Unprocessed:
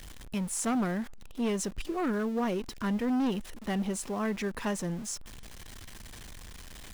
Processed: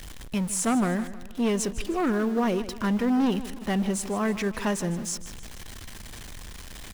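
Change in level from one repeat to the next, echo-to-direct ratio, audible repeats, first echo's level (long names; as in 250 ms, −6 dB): −6.5 dB, −13.5 dB, 3, −14.5 dB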